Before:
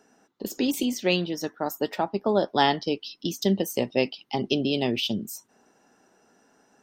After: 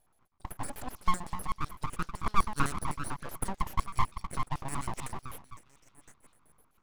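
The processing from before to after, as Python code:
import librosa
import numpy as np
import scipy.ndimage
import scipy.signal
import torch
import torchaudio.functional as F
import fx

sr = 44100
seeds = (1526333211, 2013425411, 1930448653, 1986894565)

y = fx.echo_stepped(x, sr, ms=209, hz=410.0, octaves=0.7, feedback_pct=70, wet_db=-3.5)
y = fx.filter_lfo_bandpass(y, sr, shape='square', hz=7.9, low_hz=560.0, high_hz=5100.0, q=6.3)
y = np.abs(y)
y = F.gain(torch.from_numpy(y), 6.0).numpy()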